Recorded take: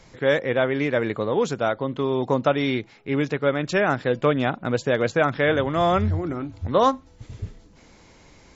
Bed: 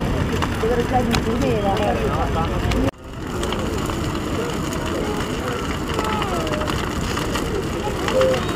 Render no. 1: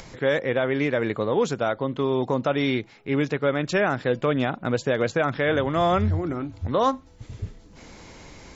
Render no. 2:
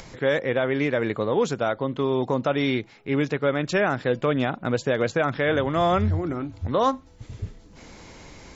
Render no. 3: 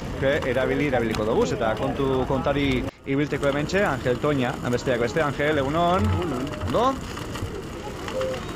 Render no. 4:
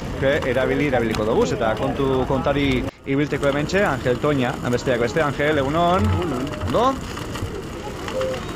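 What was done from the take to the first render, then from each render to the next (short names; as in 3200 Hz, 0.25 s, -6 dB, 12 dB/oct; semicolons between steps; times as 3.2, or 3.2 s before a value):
upward compressor, threshold -36 dBFS; limiter -12 dBFS, peak gain reduction 5.5 dB
nothing audible
add bed -10 dB
gain +3 dB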